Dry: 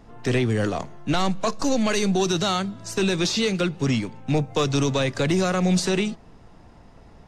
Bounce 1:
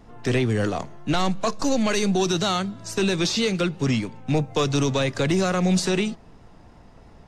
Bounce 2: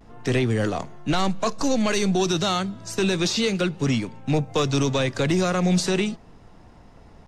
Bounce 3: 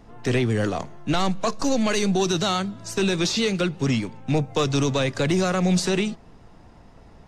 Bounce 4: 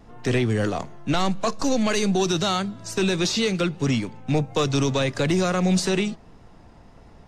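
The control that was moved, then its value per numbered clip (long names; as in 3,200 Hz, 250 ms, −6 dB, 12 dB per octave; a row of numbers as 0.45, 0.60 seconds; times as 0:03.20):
pitch vibrato, speed: 3, 0.33, 8.3, 1.6 Hertz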